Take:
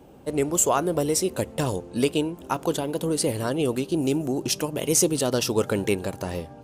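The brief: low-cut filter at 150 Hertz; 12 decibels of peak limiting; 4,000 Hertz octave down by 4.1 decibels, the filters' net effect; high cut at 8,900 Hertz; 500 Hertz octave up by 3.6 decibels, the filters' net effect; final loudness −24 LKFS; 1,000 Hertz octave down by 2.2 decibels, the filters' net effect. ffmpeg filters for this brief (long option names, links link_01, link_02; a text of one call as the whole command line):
ffmpeg -i in.wav -af "highpass=150,lowpass=8900,equalizer=frequency=500:width_type=o:gain=5.5,equalizer=frequency=1000:width_type=o:gain=-5,equalizer=frequency=4000:width_type=o:gain=-5.5,volume=5dB,alimiter=limit=-14.5dB:level=0:latency=1" out.wav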